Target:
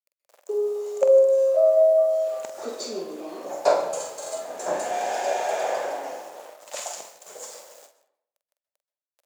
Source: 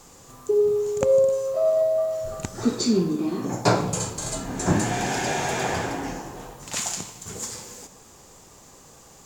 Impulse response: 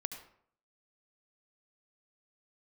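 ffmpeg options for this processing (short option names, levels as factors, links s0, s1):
-filter_complex "[0:a]aeval=exprs='val(0)*gte(abs(val(0)),0.0126)':c=same,highpass=f=580:t=q:w=6,asplit=2[s0][s1];[1:a]atrim=start_sample=2205,asetrate=37926,aresample=44100,adelay=46[s2];[s1][s2]afir=irnorm=-1:irlink=0,volume=0.447[s3];[s0][s3]amix=inputs=2:normalize=0,volume=0.422"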